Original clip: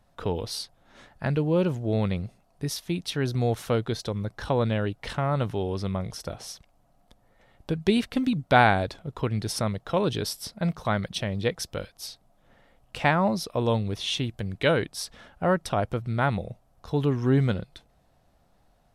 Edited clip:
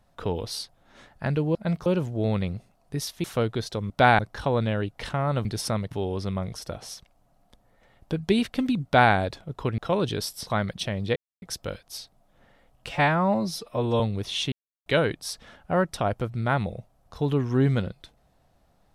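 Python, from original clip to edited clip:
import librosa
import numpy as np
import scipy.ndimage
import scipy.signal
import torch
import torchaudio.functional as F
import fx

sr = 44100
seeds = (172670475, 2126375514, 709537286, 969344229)

y = fx.edit(x, sr, fx.cut(start_s=2.93, length_s=0.64),
    fx.duplicate(start_s=8.42, length_s=0.29, to_s=4.23),
    fx.move(start_s=9.36, length_s=0.46, to_s=5.49),
    fx.move(start_s=10.51, length_s=0.31, to_s=1.55),
    fx.insert_silence(at_s=11.51, length_s=0.26),
    fx.stretch_span(start_s=12.98, length_s=0.74, factor=1.5),
    fx.silence(start_s=14.24, length_s=0.34), tone=tone)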